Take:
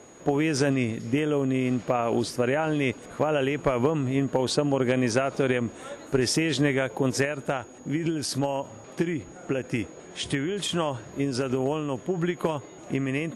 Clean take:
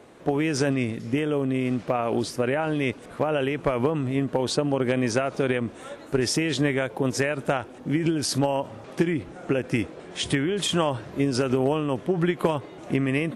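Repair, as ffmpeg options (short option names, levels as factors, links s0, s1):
-af "bandreject=f=6700:w=30,asetnsamples=n=441:p=0,asendcmd='7.25 volume volume 3.5dB',volume=1"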